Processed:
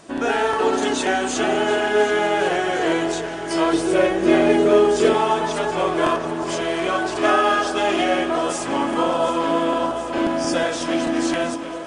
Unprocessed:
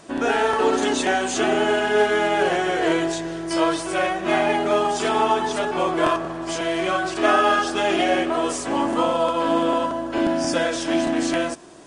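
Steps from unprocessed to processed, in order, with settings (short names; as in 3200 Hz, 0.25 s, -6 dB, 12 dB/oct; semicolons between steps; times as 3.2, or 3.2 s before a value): 3.73–5.14 resonant low shelf 610 Hz +6 dB, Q 3; echo with dull and thin repeats by turns 0.364 s, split 1200 Hz, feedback 87%, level -12 dB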